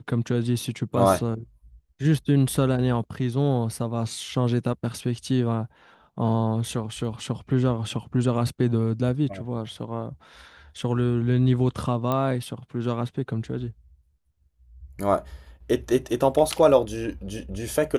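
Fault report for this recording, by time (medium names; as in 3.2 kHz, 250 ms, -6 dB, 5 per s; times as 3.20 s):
12.12 s: pop -13 dBFS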